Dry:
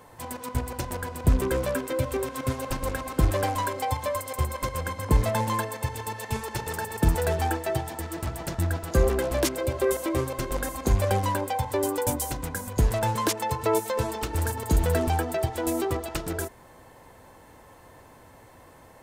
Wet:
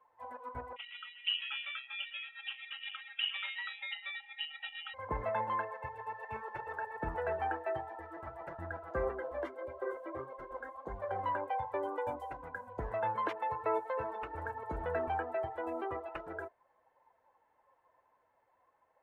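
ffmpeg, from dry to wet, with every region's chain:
-filter_complex "[0:a]asettb=1/sr,asplit=3[a][b][c];[a]atrim=end=0.764[d];[b]atrim=start=0.76:end=4.94,asetpts=PTS-STARTPTS,afade=t=in:d=0.004:c=qsin,afade=t=out:st=4.176:d=0.004:c=qsin,aeval=exprs='val(0)*sin(2*PI*980*n/s)':c=same,lowpass=f=3.3k:t=q:w=0.5098,lowpass=f=3.3k:t=q:w=0.6013,lowpass=f=3.3k:t=q:w=0.9,lowpass=f=3.3k:t=q:w=2.563,afreqshift=-3900[e];[c]atrim=start=4.936[f];[d][e]acrossfade=d=0.004:c1=hsin:c2=qsin[g];[g][f]acrossfade=d=0.004:c1=qsin:c2=hsin,asettb=1/sr,asplit=3[h][i][j];[h]atrim=end=9.114[k];[i]atrim=start=9.11:end=11.19,asetpts=PTS-STARTPTS,afade=t=in:d=0.004:c=qsin,afade=t=out:st=2.076:d=0.004:c=qsin,bandreject=f=2.5k:w=7.4,flanger=delay=4.1:depth=7.9:regen=-41:speed=1.6:shape=sinusoidal[l];[j]atrim=start=11.186[m];[k][l]acrossfade=d=0.004:c1=hsin:c2=qsin[n];[n][m]acrossfade=d=0.004:c1=qsin:c2=hsin,acrossover=split=470 2600:gain=0.158 1 0.0794[o][p][q];[o][p][q]amix=inputs=3:normalize=0,afftdn=nr=16:nf=-41,volume=-5dB"

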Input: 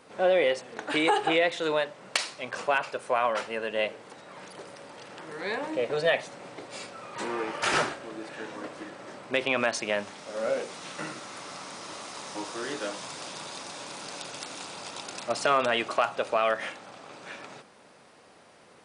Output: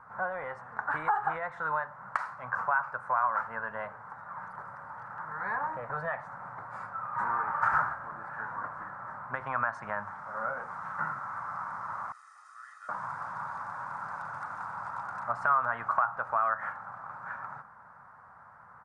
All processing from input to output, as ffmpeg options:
-filter_complex "[0:a]asettb=1/sr,asplit=3[a][b][c];[a]atrim=end=12.124[d];[b]atrim=start=12.12:end=12.89,asetpts=PTS-STARTPTS,afade=t=in:d=0.004:c=qsin,afade=t=out:st=0.766:d=0.004:c=qsin,highpass=1.4k,aderivative,aecho=1:1:1.6:0.78,atrim=end_sample=33957[e];[c]atrim=start=12.886[f];[d][e]acrossfade=d=0.004:c1=hsin:c2=qsin[g];[g][f]acrossfade=d=0.004:c1=qsin:c2=hsin,highshelf=f=2k:t=q:w=3:g=-11,acompressor=threshold=-26dB:ratio=3,firequalizer=gain_entry='entry(110,0);entry(330,-26);entry(910,0);entry(3600,-19)':delay=0.05:min_phase=1,volume=5dB"

